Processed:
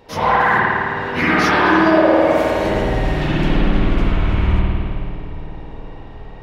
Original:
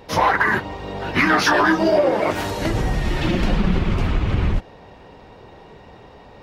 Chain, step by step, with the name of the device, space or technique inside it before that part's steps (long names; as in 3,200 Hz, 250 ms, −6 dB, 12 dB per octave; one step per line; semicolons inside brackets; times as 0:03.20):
dub delay into a spring reverb (feedback echo with a low-pass in the loop 417 ms, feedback 71%, low-pass 810 Hz, level −12.5 dB; spring reverb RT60 2.3 s, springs 53 ms, chirp 65 ms, DRR −6.5 dB)
level −4.5 dB